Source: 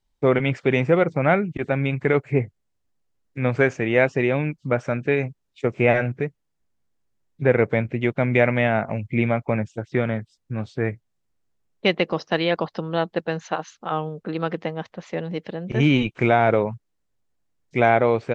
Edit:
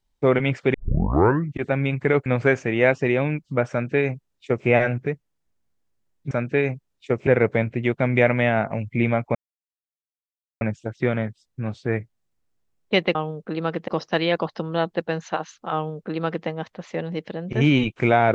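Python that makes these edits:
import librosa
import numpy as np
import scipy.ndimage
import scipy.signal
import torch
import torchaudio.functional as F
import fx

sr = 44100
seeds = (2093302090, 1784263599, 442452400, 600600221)

y = fx.edit(x, sr, fx.tape_start(start_s=0.74, length_s=0.83),
    fx.cut(start_s=2.26, length_s=1.14),
    fx.duplicate(start_s=4.85, length_s=0.96, to_s=7.45),
    fx.insert_silence(at_s=9.53, length_s=1.26),
    fx.duplicate(start_s=13.93, length_s=0.73, to_s=12.07), tone=tone)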